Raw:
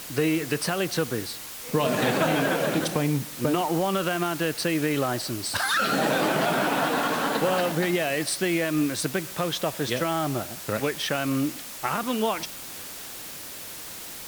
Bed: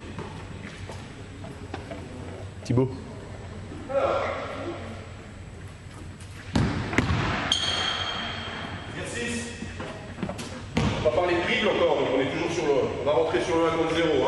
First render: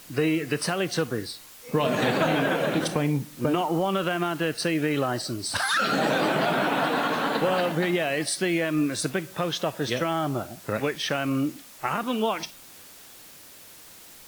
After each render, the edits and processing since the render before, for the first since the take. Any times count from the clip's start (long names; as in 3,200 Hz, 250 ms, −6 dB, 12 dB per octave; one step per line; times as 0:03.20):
noise reduction from a noise print 9 dB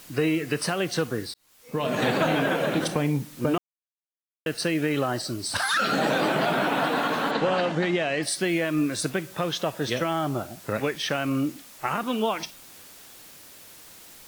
0:01.34–0:02.05: fade in
0:03.58–0:04.46: silence
0:07.31–0:08.23: low-pass filter 7,300 Hz 24 dB per octave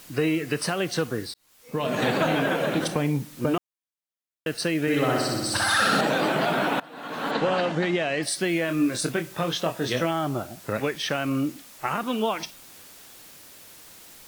0:04.81–0:06.01: flutter between parallel walls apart 10.6 metres, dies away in 1.4 s
0:06.80–0:07.34: fade in quadratic, from −22 dB
0:08.66–0:10.11: double-tracking delay 24 ms −6 dB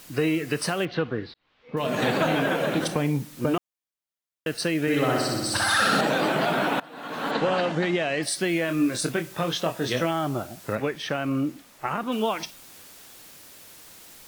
0:00.85–0:01.77: inverse Chebyshev low-pass filter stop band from 10,000 Hz, stop band 60 dB
0:10.75–0:12.12: high-shelf EQ 2,900 Hz −8 dB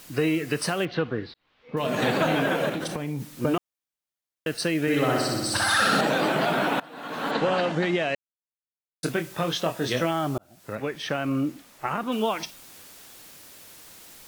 0:02.69–0:03.38: downward compressor, threshold −26 dBFS
0:08.15–0:09.03: silence
0:10.38–0:11.05: fade in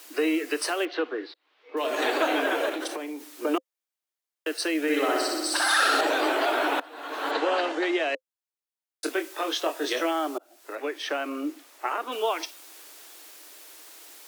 Butterworth high-pass 290 Hz 72 dB per octave
notch filter 520 Hz, Q 15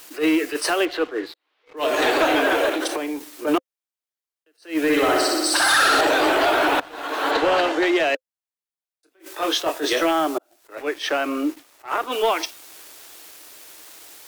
leveller curve on the samples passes 2
level that may rise only so fast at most 230 dB per second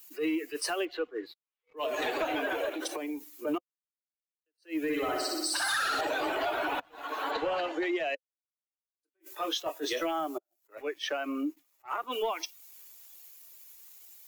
spectral dynamics exaggerated over time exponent 1.5
downward compressor 2.5 to 1, threshold −33 dBFS, peak gain reduction 11 dB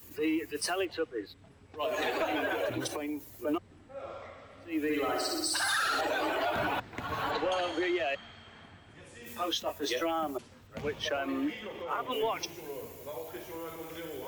mix in bed −18.5 dB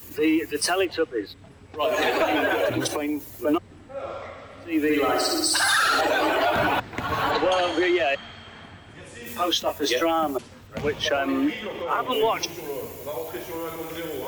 level +9 dB